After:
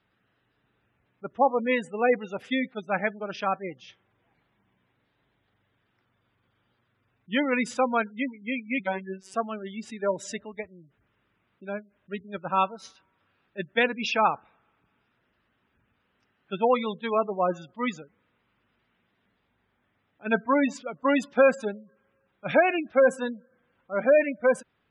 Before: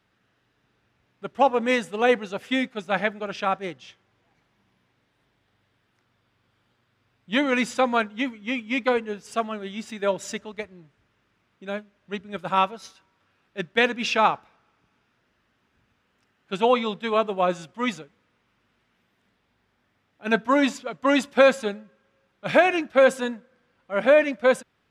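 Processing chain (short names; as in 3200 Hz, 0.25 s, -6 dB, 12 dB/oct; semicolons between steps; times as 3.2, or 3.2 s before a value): 8.79–9.34 robotiser 190 Hz; spectral gate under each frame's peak -20 dB strong; gain -2.5 dB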